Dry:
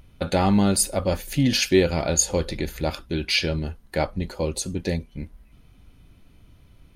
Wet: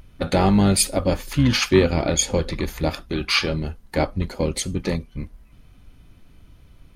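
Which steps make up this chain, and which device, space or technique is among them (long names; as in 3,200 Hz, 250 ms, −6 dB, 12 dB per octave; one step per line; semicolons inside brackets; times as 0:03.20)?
octave pedal (pitch-shifted copies added −12 semitones −6 dB)
0:01.14–0:02.57: high-shelf EQ 6,800 Hz −6 dB
level +1.5 dB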